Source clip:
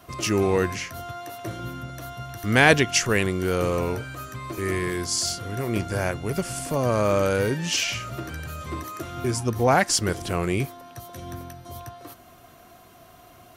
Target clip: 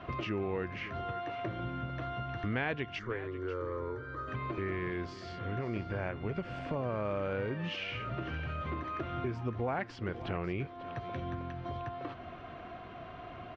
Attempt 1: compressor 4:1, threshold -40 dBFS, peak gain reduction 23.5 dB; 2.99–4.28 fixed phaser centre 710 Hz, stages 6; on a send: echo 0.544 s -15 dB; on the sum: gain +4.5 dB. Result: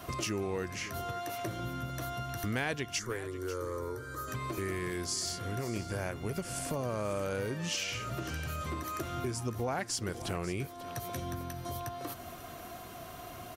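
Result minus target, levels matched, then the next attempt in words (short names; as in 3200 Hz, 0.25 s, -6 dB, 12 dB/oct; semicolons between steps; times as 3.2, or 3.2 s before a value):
4000 Hz band +5.5 dB
compressor 4:1, threshold -40 dBFS, peak gain reduction 23.5 dB; LPF 3000 Hz 24 dB/oct; 2.99–4.28 fixed phaser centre 710 Hz, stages 6; on a send: echo 0.544 s -15 dB; on the sum: gain +4.5 dB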